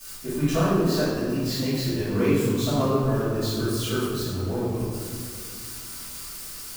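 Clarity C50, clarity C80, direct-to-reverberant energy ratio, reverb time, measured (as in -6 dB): -3.5 dB, -0.5 dB, -18.0 dB, 2.2 s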